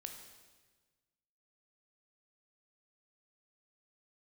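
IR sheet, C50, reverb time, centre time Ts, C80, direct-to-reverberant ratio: 6.0 dB, 1.4 s, 32 ms, 8.0 dB, 4.0 dB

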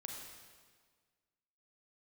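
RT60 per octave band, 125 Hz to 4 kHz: 1.7, 1.8, 1.7, 1.6, 1.5, 1.4 seconds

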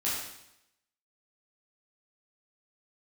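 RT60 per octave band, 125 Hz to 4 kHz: 0.85, 0.85, 0.80, 0.80, 0.80, 0.80 seconds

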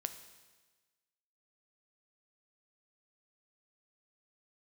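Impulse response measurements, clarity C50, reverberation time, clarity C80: 11.0 dB, 1.3 s, 12.5 dB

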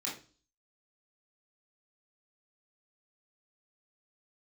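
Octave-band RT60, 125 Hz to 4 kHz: 0.50, 0.50, 0.40, 0.35, 0.35, 0.40 seconds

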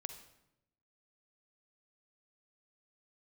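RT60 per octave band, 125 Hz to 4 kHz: 1.2, 1.1, 0.95, 0.80, 0.75, 0.65 seconds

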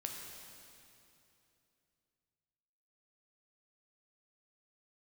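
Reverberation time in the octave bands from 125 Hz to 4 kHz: 3.5, 3.2, 3.0, 2.7, 2.6, 2.6 seconds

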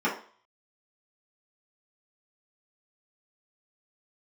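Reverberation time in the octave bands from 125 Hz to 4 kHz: 0.30, 0.40, 0.45, 0.50, 0.40, 0.45 seconds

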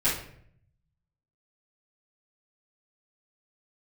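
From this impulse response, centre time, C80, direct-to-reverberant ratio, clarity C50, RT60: 37 ms, 9.5 dB, −11.5 dB, 4.0 dB, 0.60 s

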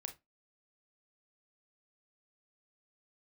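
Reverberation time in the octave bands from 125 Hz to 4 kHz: 0.20, 0.25, 0.20, 0.20, 0.20, 0.15 seconds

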